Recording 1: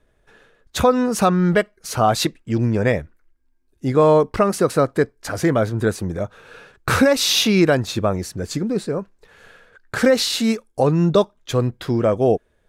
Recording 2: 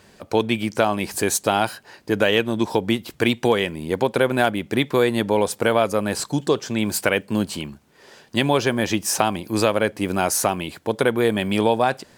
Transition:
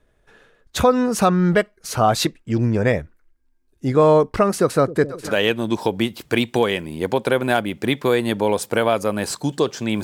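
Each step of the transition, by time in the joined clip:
recording 1
0:04.60–0:05.38: echo with a time of its own for lows and highs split 460 Hz, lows 266 ms, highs 488 ms, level −13 dB
0:05.30: continue with recording 2 from 0:02.19, crossfade 0.16 s

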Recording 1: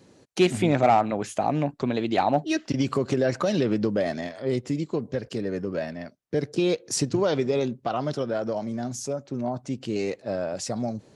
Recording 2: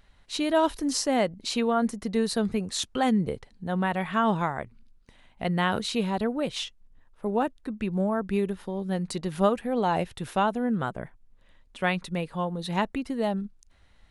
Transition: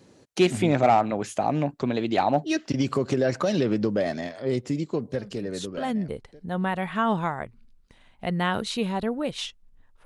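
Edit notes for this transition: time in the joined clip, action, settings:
recording 1
0:05.77: continue with recording 2 from 0:02.95, crossfade 1.34 s linear

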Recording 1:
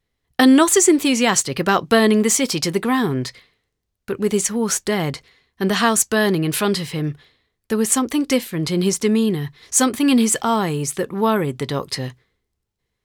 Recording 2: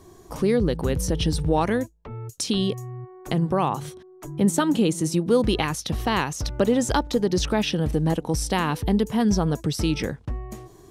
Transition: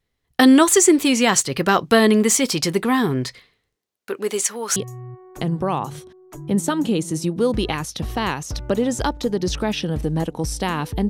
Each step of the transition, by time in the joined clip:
recording 1
0:03.74–0:04.76: high-pass filter 250 Hz → 650 Hz
0:04.76: continue with recording 2 from 0:02.66

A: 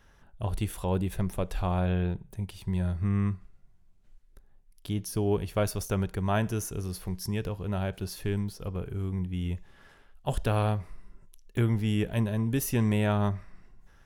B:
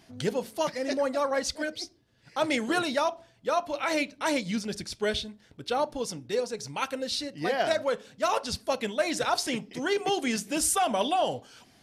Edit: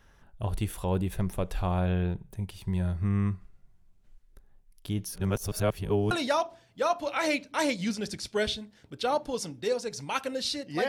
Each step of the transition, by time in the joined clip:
A
0:05.16–0:06.11: reverse
0:06.11: continue with B from 0:02.78

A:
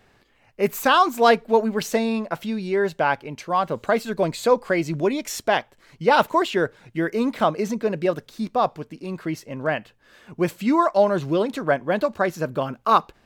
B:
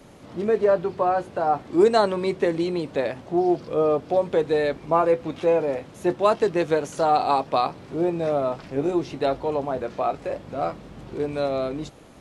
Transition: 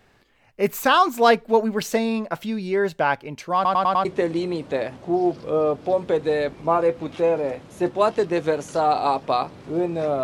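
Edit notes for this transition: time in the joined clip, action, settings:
A
0:03.55: stutter in place 0.10 s, 5 plays
0:04.05: continue with B from 0:02.29

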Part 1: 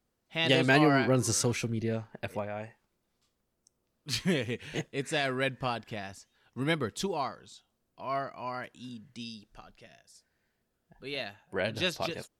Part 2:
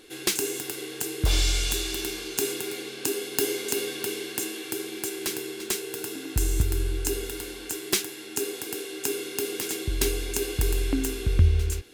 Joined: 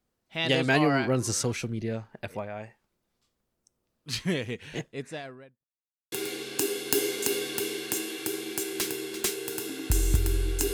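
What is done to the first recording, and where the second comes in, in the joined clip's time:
part 1
0:04.69–0:05.65: fade out and dull
0:05.65–0:06.12: silence
0:06.12: continue with part 2 from 0:02.58

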